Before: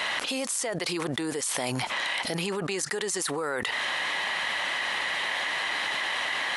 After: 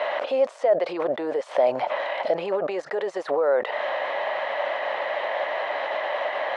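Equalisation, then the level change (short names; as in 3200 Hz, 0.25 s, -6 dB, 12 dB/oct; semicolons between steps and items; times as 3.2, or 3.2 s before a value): resonant high-pass 590 Hz, resonance Q 5.7; LPF 3600 Hz 12 dB/oct; tilt -4 dB/oct; 0.0 dB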